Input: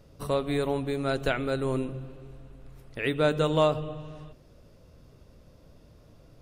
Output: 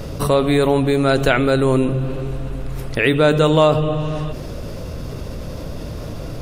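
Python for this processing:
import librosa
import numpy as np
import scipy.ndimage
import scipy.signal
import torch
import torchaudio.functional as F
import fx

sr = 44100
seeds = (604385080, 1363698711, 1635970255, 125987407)

y = fx.env_flatten(x, sr, amount_pct=50)
y = F.gain(torch.from_numpy(y), 8.5).numpy()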